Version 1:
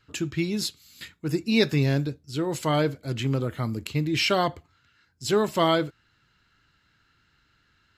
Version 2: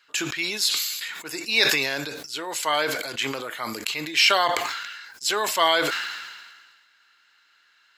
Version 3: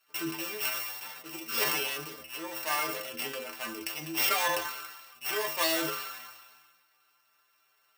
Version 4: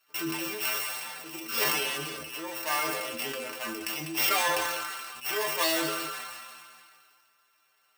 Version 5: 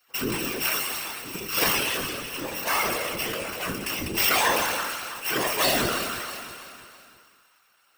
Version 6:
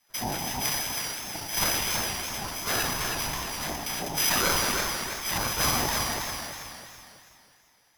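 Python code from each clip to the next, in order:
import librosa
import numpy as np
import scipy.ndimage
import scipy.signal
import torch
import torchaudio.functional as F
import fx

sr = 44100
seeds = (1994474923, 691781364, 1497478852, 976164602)

y1 = scipy.signal.sosfilt(scipy.signal.butter(2, 950.0, 'highpass', fs=sr, output='sos'), x)
y1 = fx.notch(y1, sr, hz=1300.0, q=18.0)
y1 = fx.sustainer(y1, sr, db_per_s=37.0)
y1 = y1 * 10.0 ** (7.0 / 20.0)
y2 = np.r_[np.sort(y1[:len(y1) // 16 * 16].reshape(-1, 16), axis=1).ravel(), y1[len(y1) // 16 * 16:]]
y2 = fx.low_shelf(y2, sr, hz=150.0, db=-4.0)
y2 = fx.stiff_resonator(y2, sr, f0_hz=77.0, decay_s=0.4, stiffness=0.008)
y2 = y2 * 10.0 ** (3.5 / 20.0)
y3 = y2 + 10.0 ** (-11.5 / 20.0) * np.pad(y2, (int(198 * sr / 1000.0), 0))[:len(y2)]
y3 = fx.sustainer(y3, sr, db_per_s=26.0)
y3 = y3 * 10.0 ** (1.0 / 20.0)
y4 = fx.octave_divider(y3, sr, octaves=1, level_db=-2.0)
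y4 = fx.whisperise(y4, sr, seeds[0])
y4 = fx.echo_feedback(y4, sr, ms=328, feedback_pct=44, wet_db=-13.5)
y4 = y4 * 10.0 ** (4.0 / 20.0)
y5 = np.r_[np.sort(y4[:len(y4) // 8 * 8].reshape(-1, 8), axis=1).ravel(), y4[len(y4) // 8 * 8:]]
y5 = y5 * np.sin(2.0 * np.pi * 490.0 * np.arange(len(y5)) / sr)
y5 = fx.echo_warbled(y5, sr, ms=324, feedback_pct=31, rate_hz=2.8, cents=92, wet_db=-5.5)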